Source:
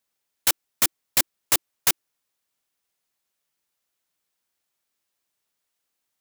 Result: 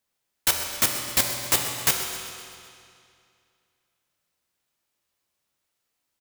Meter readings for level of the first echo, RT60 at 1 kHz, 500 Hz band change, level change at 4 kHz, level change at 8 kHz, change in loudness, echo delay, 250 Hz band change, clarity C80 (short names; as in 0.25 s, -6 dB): -14.0 dB, 2.4 s, +3.5 dB, +1.5 dB, +0.5 dB, -0.5 dB, 0.129 s, +4.0 dB, 4.5 dB